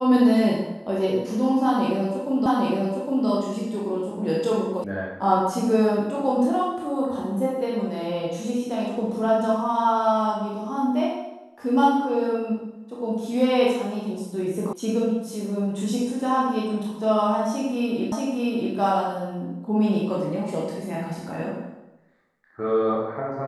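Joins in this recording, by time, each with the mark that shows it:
2.46 s: repeat of the last 0.81 s
4.84 s: sound stops dead
14.73 s: sound stops dead
18.12 s: repeat of the last 0.63 s

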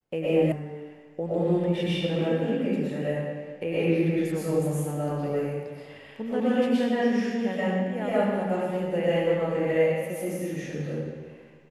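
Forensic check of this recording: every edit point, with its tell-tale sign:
0.52 s: sound stops dead

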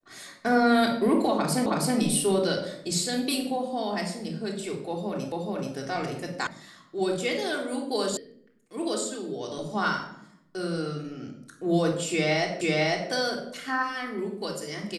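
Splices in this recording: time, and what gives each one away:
1.66 s: repeat of the last 0.32 s
5.32 s: repeat of the last 0.43 s
6.47 s: sound stops dead
8.17 s: sound stops dead
12.61 s: repeat of the last 0.5 s

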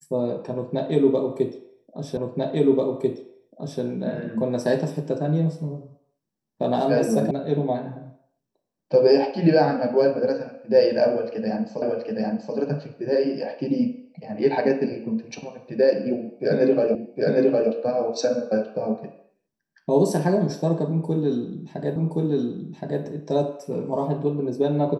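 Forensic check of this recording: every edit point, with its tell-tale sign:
2.17 s: repeat of the last 1.64 s
7.31 s: sound stops dead
11.82 s: repeat of the last 0.73 s
16.95 s: repeat of the last 0.76 s
21.96 s: repeat of the last 1.07 s

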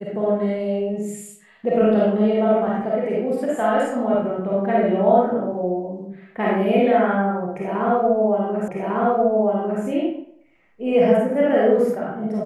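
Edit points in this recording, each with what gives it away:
8.68 s: repeat of the last 1.15 s

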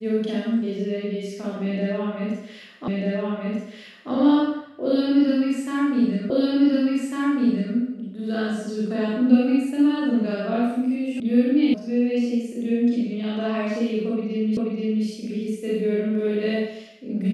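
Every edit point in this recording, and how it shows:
2.88 s: repeat of the last 1.24 s
6.30 s: repeat of the last 1.45 s
11.20 s: sound stops dead
11.74 s: sound stops dead
14.57 s: repeat of the last 0.48 s

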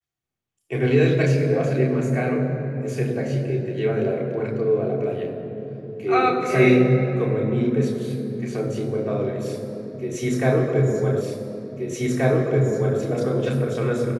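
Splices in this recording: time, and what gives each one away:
11.21 s: repeat of the last 1.78 s

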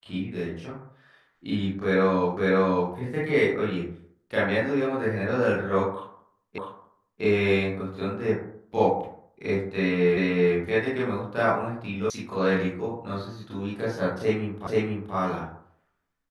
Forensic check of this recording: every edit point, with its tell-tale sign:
2.37 s: repeat of the last 0.55 s
6.58 s: repeat of the last 0.65 s
10.17 s: repeat of the last 0.38 s
12.10 s: sound stops dead
14.67 s: repeat of the last 0.48 s

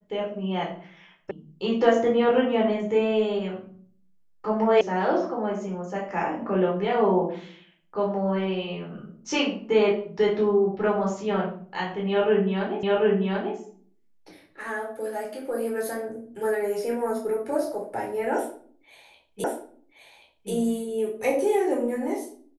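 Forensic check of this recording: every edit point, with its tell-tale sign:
1.31 s: sound stops dead
4.81 s: sound stops dead
12.83 s: repeat of the last 0.74 s
19.44 s: repeat of the last 1.08 s

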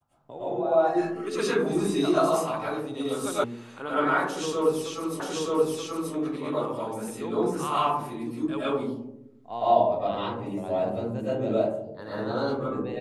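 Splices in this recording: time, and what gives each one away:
3.44 s: sound stops dead
5.20 s: repeat of the last 0.93 s

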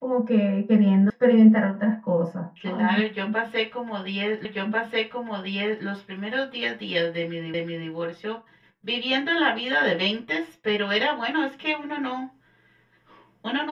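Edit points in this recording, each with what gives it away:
1.10 s: sound stops dead
4.45 s: repeat of the last 1.39 s
7.54 s: repeat of the last 0.37 s

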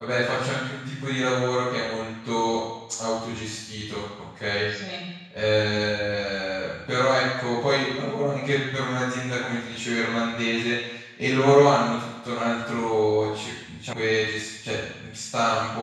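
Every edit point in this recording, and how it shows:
13.93 s: sound stops dead

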